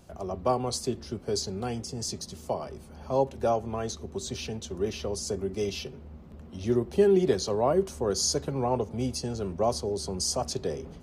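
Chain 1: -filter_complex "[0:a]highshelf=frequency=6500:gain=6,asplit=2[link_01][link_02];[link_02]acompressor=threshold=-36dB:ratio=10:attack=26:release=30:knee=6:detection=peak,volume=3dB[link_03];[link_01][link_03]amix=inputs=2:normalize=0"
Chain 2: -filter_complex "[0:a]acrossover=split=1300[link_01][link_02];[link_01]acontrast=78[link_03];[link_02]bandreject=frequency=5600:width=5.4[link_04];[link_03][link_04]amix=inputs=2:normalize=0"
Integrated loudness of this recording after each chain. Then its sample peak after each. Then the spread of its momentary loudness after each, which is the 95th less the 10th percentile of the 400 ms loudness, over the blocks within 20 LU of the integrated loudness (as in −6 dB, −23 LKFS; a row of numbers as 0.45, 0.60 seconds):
−24.5, −23.5 LKFS; −9.0, −5.5 dBFS; 9, 13 LU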